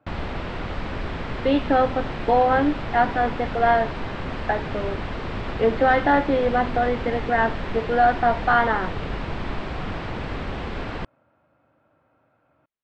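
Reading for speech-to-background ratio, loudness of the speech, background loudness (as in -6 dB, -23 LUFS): 9.0 dB, -22.0 LUFS, -31.0 LUFS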